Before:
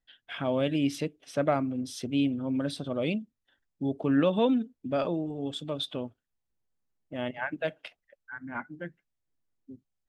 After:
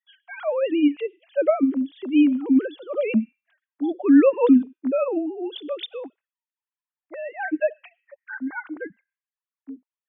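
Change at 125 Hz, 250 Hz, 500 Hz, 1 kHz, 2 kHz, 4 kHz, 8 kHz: under -10 dB, +9.0 dB, +7.5 dB, +2.0 dB, +4.5 dB, -2.0 dB, no reading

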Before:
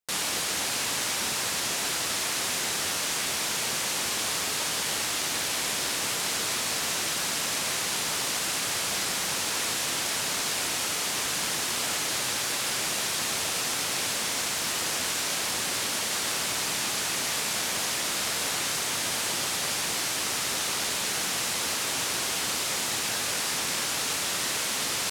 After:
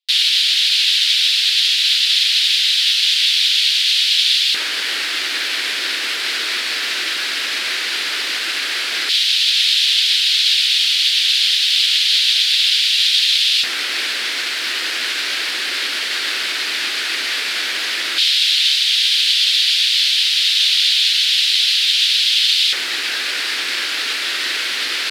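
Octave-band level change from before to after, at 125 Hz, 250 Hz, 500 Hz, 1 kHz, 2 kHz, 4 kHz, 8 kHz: under -15 dB, no reading, -3.0 dB, -0.5 dB, +11.0 dB, +17.0 dB, +0.5 dB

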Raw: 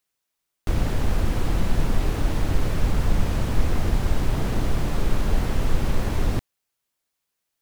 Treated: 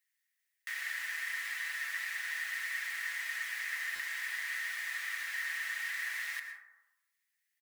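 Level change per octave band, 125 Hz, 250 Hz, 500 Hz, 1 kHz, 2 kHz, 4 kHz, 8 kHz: under -40 dB, under -40 dB, under -35 dB, -17.5 dB, +5.0 dB, -5.0 dB, -4.5 dB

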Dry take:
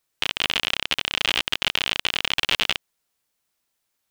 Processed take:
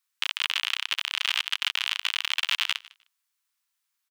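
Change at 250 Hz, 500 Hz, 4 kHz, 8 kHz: under -40 dB, under -25 dB, -3.5 dB, -3.5 dB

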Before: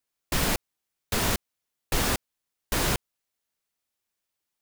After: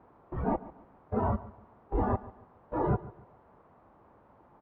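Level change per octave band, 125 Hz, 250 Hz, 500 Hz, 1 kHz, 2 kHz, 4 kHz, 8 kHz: -0.5 dB, 0.0 dB, +0.5 dB, 0.0 dB, -18.0 dB, under -40 dB, under -40 dB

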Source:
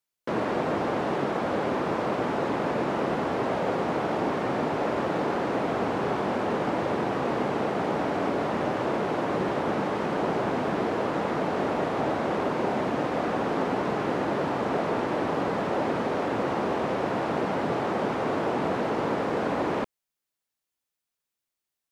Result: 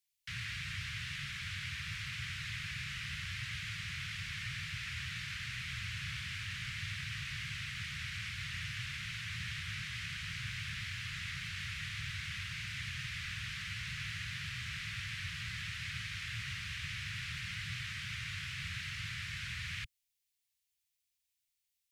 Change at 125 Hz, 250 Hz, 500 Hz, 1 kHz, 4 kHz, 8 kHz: -6.5 dB, -27.0 dB, under -40 dB, -27.5 dB, +2.0 dB, no reading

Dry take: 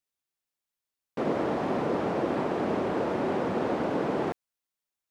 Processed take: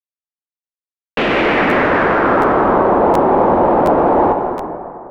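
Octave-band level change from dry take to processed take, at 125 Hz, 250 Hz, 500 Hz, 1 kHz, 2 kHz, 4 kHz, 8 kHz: +11.5 dB, +13.0 dB, +15.0 dB, +19.5 dB, +21.0 dB, +16.5 dB, no reading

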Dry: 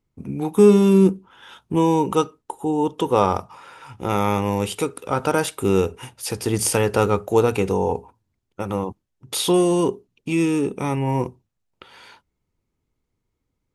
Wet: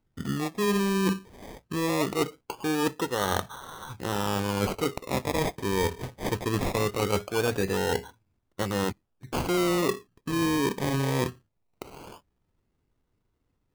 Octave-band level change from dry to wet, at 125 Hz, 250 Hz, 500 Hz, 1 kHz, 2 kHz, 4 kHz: -6.5 dB, -8.0 dB, -9.0 dB, -6.5 dB, 0.0 dB, -2.0 dB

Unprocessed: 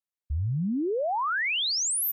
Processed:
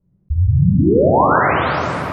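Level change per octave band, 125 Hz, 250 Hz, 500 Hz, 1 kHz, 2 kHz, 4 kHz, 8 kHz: +16.5 dB, +14.5 dB, +16.0 dB, +15.0 dB, +8.0 dB, no reading, under -20 dB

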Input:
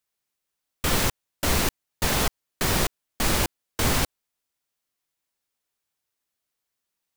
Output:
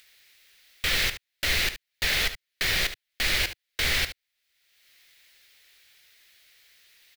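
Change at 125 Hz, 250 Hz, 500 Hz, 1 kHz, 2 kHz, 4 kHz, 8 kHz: -9.5 dB, -13.5 dB, -9.0 dB, -10.0 dB, +4.0 dB, +3.5 dB, -5.5 dB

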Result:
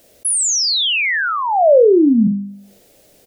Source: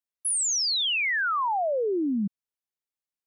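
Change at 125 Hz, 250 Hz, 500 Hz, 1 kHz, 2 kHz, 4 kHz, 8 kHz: +15.5 dB, +14.5 dB, +16.5 dB, +9.0 dB, +8.0 dB, +8.5 dB, +9.0 dB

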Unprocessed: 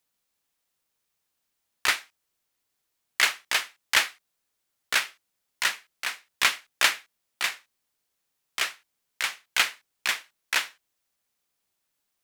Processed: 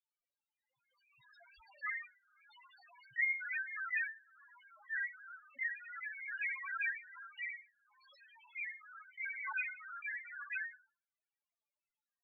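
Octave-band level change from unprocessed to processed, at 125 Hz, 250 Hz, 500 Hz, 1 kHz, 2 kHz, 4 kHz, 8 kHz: no reading, under -30 dB, under -30 dB, -16.0 dB, -9.5 dB, under -35 dB, under -40 dB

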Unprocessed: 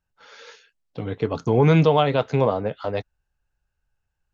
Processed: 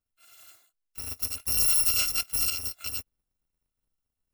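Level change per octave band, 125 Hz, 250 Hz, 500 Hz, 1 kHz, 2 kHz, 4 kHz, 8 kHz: -24.5 dB, -28.5 dB, -32.5 dB, -22.0 dB, -5.5 dB, +4.5 dB, no reading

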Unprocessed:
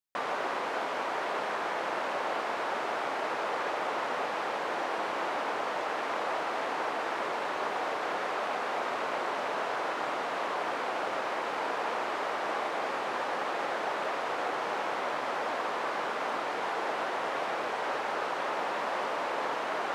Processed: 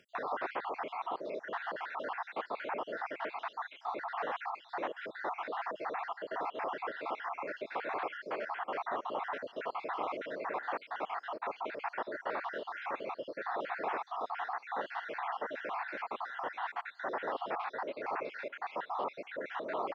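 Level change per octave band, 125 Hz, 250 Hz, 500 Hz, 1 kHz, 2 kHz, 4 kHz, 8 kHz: no reading, -6.5 dB, -6.5 dB, -6.0 dB, -7.0 dB, -12.0 dB, under -20 dB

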